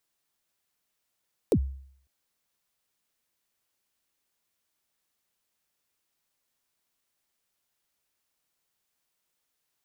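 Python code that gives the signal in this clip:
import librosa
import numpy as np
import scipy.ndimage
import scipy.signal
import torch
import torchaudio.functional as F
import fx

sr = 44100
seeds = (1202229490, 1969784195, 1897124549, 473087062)

y = fx.drum_kick(sr, seeds[0], length_s=0.55, level_db=-16.0, start_hz=540.0, end_hz=67.0, sweep_ms=68.0, decay_s=0.61, click=True)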